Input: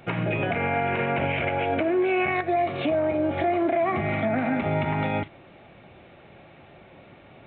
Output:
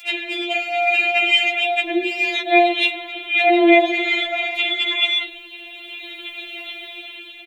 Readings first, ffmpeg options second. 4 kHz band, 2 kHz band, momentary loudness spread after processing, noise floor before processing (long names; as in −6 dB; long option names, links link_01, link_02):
+21.5 dB, +12.0 dB, 19 LU, −51 dBFS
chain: -filter_complex "[0:a]aexciter=amount=11.7:drive=7.7:freq=2300,acrossover=split=200|610[link_01][link_02][link_03];[link_02]adelay=60[link_04];[link_01]adelay=160[link_05];[link_05][link_04][link_03]amix=inputs=3:normalize=0,dynaudnorm=framelen=220:gausssize=7:maxgain=9dB,afftfilt=real='re*4*eq(mod(b,16),0)':imag='im*4*eq(mod(b,16),0)':win_size=2048:overlap=0.75,volume=1.5dB"